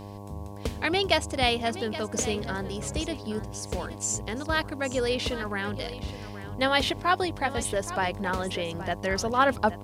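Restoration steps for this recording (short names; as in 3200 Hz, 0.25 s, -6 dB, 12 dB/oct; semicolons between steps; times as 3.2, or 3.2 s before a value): de-hum 101 Hz, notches 11; expander -31 dBFS, range -21 dB; inverse comb 0.822 s -14 dB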